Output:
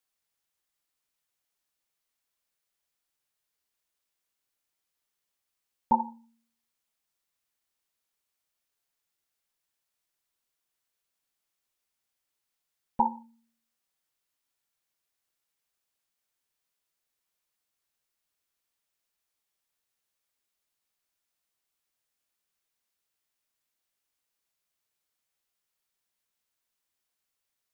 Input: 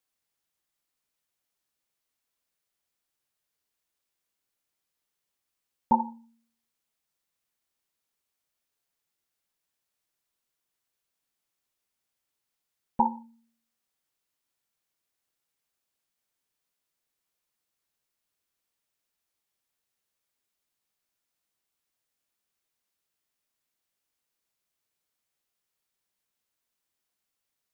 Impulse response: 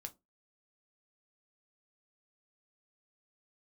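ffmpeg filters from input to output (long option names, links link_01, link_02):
-af "equalizer=frequency=200:width_type=o:width=2.9:gain=-3.5"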